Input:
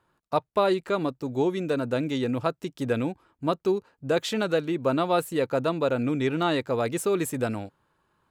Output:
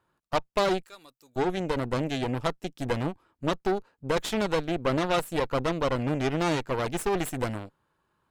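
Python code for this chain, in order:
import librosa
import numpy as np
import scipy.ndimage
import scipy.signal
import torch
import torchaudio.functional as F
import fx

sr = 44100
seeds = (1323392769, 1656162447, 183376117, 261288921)

y = fx.pre_emphasis(x, sr, coefficient=0.97, at=(0.82, 1.36))
y = fx.cheby_harmonics(y, sr, harmonics=(8,), levels_db=(-14,), full_scale_db=-9.5)
y = y * librosa.db_to_amplitude(-3.5)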